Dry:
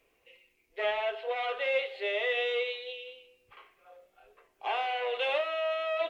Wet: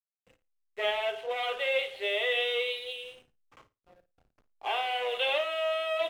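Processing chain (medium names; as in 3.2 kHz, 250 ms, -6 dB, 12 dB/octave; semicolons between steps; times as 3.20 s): dynamic bell 3.3 kHz, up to +7 dB, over -52 dBFS, Q 3; hysteresis with a dead band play -47 dBFS; flutter echo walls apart 9.4 m, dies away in 0.22 s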